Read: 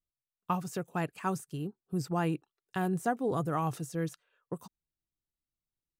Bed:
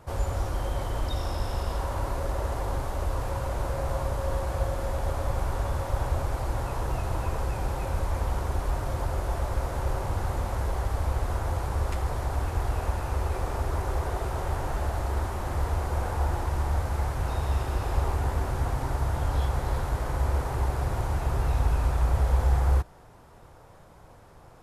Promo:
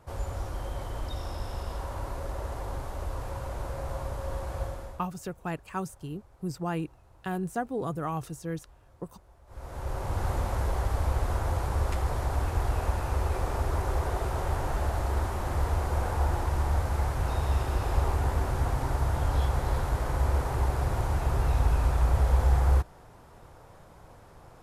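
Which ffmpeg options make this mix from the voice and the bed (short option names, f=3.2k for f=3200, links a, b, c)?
-filter_complex "[0:a]adelay=4500,volume=-1dB[a];[1:a]volume=23dB,afade=t=out:st=4.63:d=0.44:silence=0.0707946,afade=t=in:st=9.46:d=0.82:silence=0.0375837[b];[a][b]amix=inputs=2:normalize=0"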